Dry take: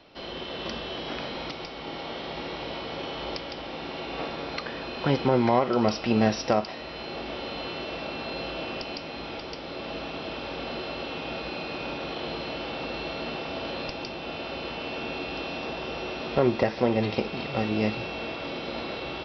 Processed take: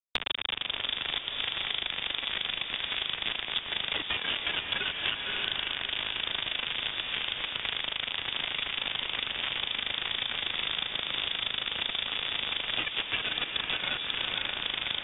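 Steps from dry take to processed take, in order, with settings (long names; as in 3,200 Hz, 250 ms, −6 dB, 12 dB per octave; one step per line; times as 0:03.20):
frequency axis turned over on the octave scale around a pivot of 600 Hz
reverb reduction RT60 0.62 s
downward compressor 10 to 1, threshold −31 dBFS, peak gain reduction 11.5 dB
bit reduction 5 bits
speed change +28%
feedback delay with all-pass diffusion 537 ms, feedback 56%, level −5.5 dB
voice inversion scrambler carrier 3,600 Hz
multiband upward and downward compressor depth 100%
level +2.5 dB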